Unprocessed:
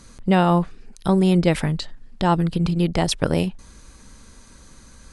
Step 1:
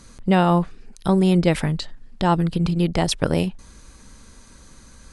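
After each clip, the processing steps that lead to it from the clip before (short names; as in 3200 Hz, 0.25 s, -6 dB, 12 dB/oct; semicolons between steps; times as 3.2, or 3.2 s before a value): nothing audible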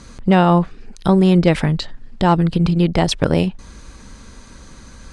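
in parallel at -3 dB: compressor 5:1, threshold -27 dBFS, peak gain reduction 14 dB; on the sum: one-sided clip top -12 dBFS; air absorption 59 m; gain +3 dB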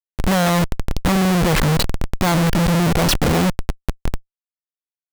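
Schmitt trigger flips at -28.5 dBFS; gain +2 dB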